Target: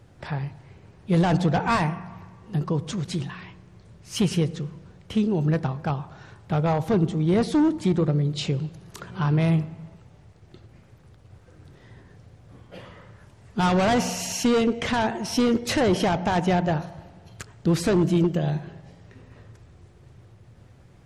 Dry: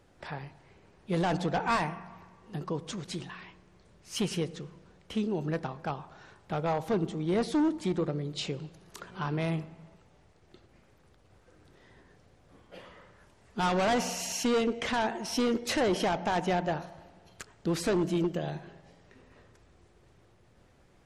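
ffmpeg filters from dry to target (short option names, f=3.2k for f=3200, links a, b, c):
-af "equalizer=f=110:t=o:w=1.3:g=12.5,volume=4.5dB"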